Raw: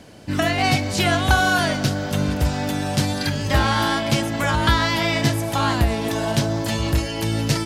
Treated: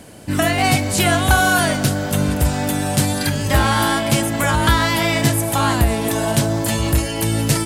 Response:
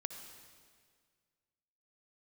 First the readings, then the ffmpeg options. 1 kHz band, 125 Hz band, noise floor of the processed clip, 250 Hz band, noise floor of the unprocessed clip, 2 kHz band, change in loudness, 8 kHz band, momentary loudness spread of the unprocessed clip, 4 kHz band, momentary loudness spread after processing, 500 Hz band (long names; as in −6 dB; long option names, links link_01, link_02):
+3.0 dB, +3.0 dB, −24 dBFS, +3.0 dB, −28 dBFS, +2.5 dB, +3.0 dB, +8.5 dB, 5 LU, +1.5 dB, 5 LU, +3.0 dB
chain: -filter_complex "[0:a]highshelf=frequency=7000:width_type=q:width=1.5:gain=7.5,asplit=2[link_01][link_02];[link_02]acontrast=66,volume=-3dB[link_03];[link_01][link_03]amix=inputs=2:normalize=0,volume=-4.5dB"